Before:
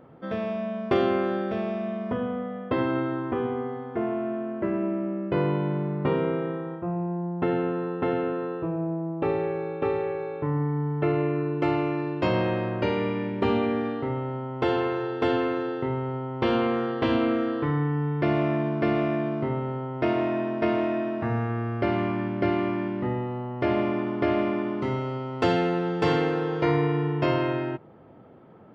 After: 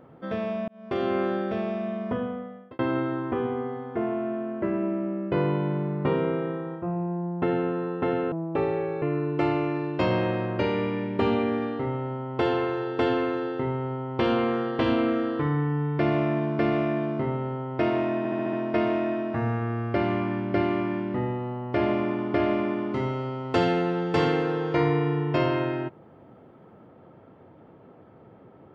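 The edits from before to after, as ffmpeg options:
-filter_complex "[0:a]asplit=10[s0][s1][s2][s3][s4][s5][s6][s7][s8][s9];[s0]atrim=end=0.68,asetpts=PTS-STARTPTS,afade=t=out:st=0.676:d=0.004:c=hsin[s10];[s1]atrim=start=0.68:end=2.79,asetpts=PTS-STARTPTS,afade=t=in:d=0.54,afade=t=out:st=1.48:d=0.63[s11];[s2]atrim=start=2.79:end=8.322,asetpts=PTS-STARTPTS,afade=t=in:d=0.004:c=hsin[s12];[s3]atrim=start=8.988:end=9.692[s13];[s4]atrim=start=11.248:end=20.482[s14];[s5]atrim=start=20.408:end=20.482[s15];[s6]atrim=start=20.408:end=20.482[s16];[s7]atrim=start=20.408:end=20.482[s17];[s8]atrim=start=20.408:end=20.482[s18];[s9]atrim=start=20.408[s19];[s10][s11][s12]concat=n=3:v=0:a=1[s20];[s20][s13]acrossfade=d=0.004:c1=hsin:c2=hsin[s21];[s21][s14]acrossfade=d=0.004:c1=hsin:c2=hsin[s22];[s22][s15]acrossfade=d=0.004:c1=hsin:c2=hsin[s23];[s23][s16]acrossfade=d=0.004:c1=hsin:c2=hsin[s24];[s24][s17]acrossfade=d=0.004:c1=hsin:c2=hsin[s25];[s25][s18]acrossfade=d=0.004:c1=hsin:c2=hsin[s26];[s26][s19]acrossfade=d=0.004:c1=hsin:c2=hsin"

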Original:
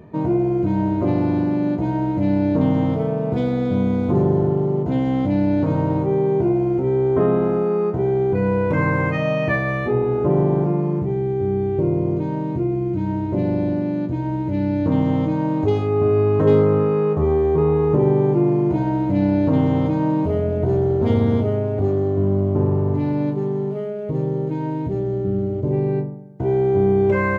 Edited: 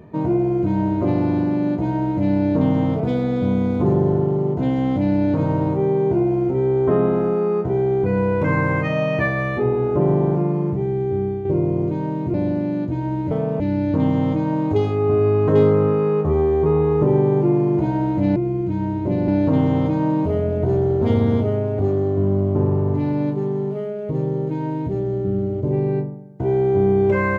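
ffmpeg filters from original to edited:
-filter_complex "[0:a]asplit=8[s0][s1][s2][s3][s4][s5][s6][s7];[s0]atrim=end=3.002[s8];[s1]atrim=start=3.288:end=11.74,asetpts=PTS-STARTPTS,afade=t=out:st=8.052:d=0.4:c=qsin:silence=0.446684[s9];[s2]atrim=start=11.74:end=12.632,asetpts=PTS-STARTPTS,afade=t=in:d=0.004:c=hsin:silence=0.446684[s10];[s3]atrim=start=13.548:end=14.522[s11];[s4]atrim=start=2.998:end=3.292[s12];[s5]atrim=start=14.518:end=19.282[s13];[s6]atrim=start=12.628:end=13.552[s14];[s7]atrim=start=19.278[s15];[s9][s10]concat=n=2:v=0:a=1[s16];[s8][s16]acrossfade=d=0.004:c1=hsin:c2=hsin[s17];[s17][s11]acrossfade=d=0.004:c1=hsin:c2=hsin[s18];[s18][s12]acrossfade=d=0.004:c1=hsin:c2=hsin[s19];[s19][s13]acrossfade=d=0.004:c1=hsin:c2=hsin[s20];[s20][s14]acrossfade=d=0.004:c1=hsin:c2=hsin[s21];[s21][s15]acrossfade=d=0.004:c1=hsin:c2=hsin"

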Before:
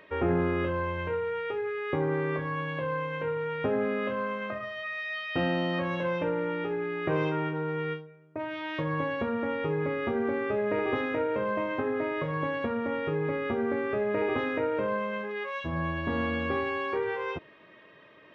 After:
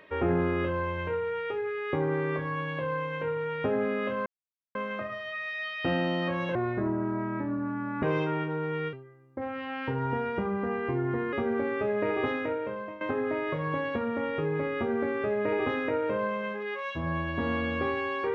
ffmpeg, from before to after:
-filter_complex "[0:a]asplit=7[s0][s1][s2][s3][s4][s5][s6];[s0]atrim=end=4.26,asetpts=PTS-STARTPTS,afade=t=out:st=4.256:d=0.004:c=hsin,apad=pad_dur=0.49[s7];[s1]atrim=start=4.26:end=6.064,asetpts=PTS-STARTPTS,afade=t=in:d=0.004:c=hsin[s8];[s2]atrim=start=6.06:end=7.08,asetpts=PTS-STARTPTS,asetrate=30429,aresample=44100,atrim=end_sample=65191,asetpts=PTS-STARTPTS[s9];[s3]atrim=start=7.076:end=7.984[s10];[s4]atrim=start=7.98:end=10.02,asetpts=PTS-STARTPTS,asetrate=37485,aresample=44100[s11];[s5]atrim=start=10.016:end=11.7,asetpts=PTS-STARTPTS,afade=t=out:st=0.994:d=0.69:silence=0.188365[s12];[s6]atrim=start=11.7,asetpts=PTS-STARTPTS,afade=t=in:d=0.004:c=hsin:silence=0.188365[s13];[s7][s8]concat=n=2:v=0:a=1[s14];[s14][s9]acrossfade=d=0.004:c1=hsin:c2=hsin[s15];[s15][s10]acrossfade=d=0.004:c1=hsin:c2=hsin[s16];[s16][s11]acrossfade=d=0.004:c1=hsin:c2=hsin[s17];[s12][s13]concat=n=2:v=0:a=1[s18];[s17][s18]acrossfade=d=0.004:c1=hsin:c2=hsin"

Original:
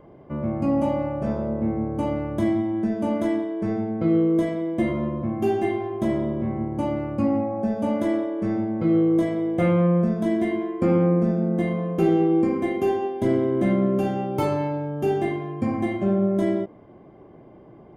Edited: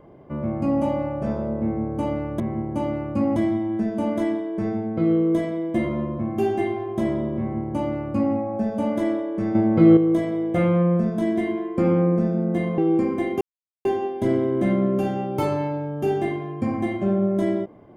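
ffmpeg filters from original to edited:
-filter_complex "[0:a]asplit=7[s0][s1][s2][s3][s4][s5][s6];[s0]atrim=end=2.402[s7];[s1]atrim=start=6.428:end=7.392[s8];[s2]atrim=start=2.398:end=8.592[s9];[s3]atrim=start=8.588:end=9.012,asetpts=PTS-STARTPTS,volume=2.24[s10];[s4]atrim=start=9.008:end=11.822[s11];[s5]atrim=start=12.218:end=12.85,asetpts=PTS-STARTPTS,afade=t=out:st=0.628:d=0.004:c=hsin,apad=pad_dur=0.44[s12];[s6]atrim=start=12.85,asetpts=PTS-STARTPTS,afade=t=in:d=0.004:c=hsin[s13];[s7][s8]acrossfade=d=0.004:c1=hsin:c2=hsin[s14];[s14][s9]acrossfade=d=0.004:c1=hsin:c2=hsin[s15];[s15][s10]acrossfade=d=0.004:c1=hsin:c2=hsin[s16];[s16][s11]acrossfade=d=0.004:c1=hsin:c2=hsin[s17];[s12][s13]concat=n=2:v=0:a=1[s18];[s17][s18]acrossfade=d=0.004:c1=hsin:c2=hsin"

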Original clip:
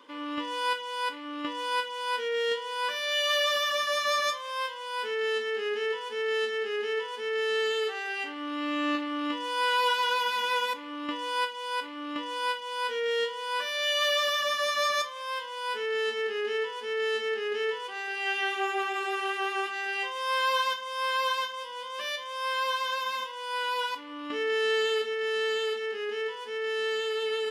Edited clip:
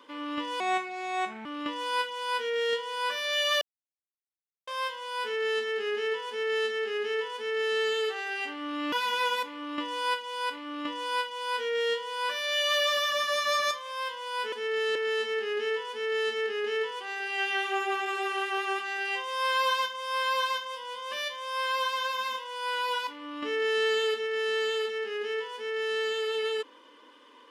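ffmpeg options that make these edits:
-filter_complex "[0:a]asplit=8[s0][s1][s2][s3][s4][s5][s6][s7];[s0]atrim=end=0.604[s8];[s1]atrim=start=0.6:end=1.24,asetpts=PTS-STARTPTS,asetrate=33075,aresample=44100[s9];[s2]atrim=start=1.236:end=3.4,asetpts=PTS-STARTPTS,afade=t=out:st=2.16:d=0.004:c=hsin[s10];[s3]atrim=start=3.4:end=4.46,asetpts=PTS-STARTPTS,volume=0[s11];[s4]atrim=start=4.46:end=8.712,asetpts=PTS-STARTPTS,afade=t=in:d=0.004:c=hsin[s12];[s5]atrim=start=10.228:end=15.832[s13];[s6]atrim=start=7.138:end=7.572[s14];[s7]atrim=start=15.828[s15];[s8][s9]acrossfade=d=0.004:c1=hsin:c2=hsin[s16];[s10][s11][s12]concat=n=3:v=0:a=1[s17];[s16][s17]acrossfade=d=0.004:c1=hsin:c2=hsin[s18];[s18][s13]acrossfade=d=0.004:c1=hsin:c2=hsin[s19];[s19][s14]acrossfade=d=0.004:c1=hsin:c2=hsin[s20];[s20][s15]acrossfade=d=0.004:c1=hsin:c2=hsin"

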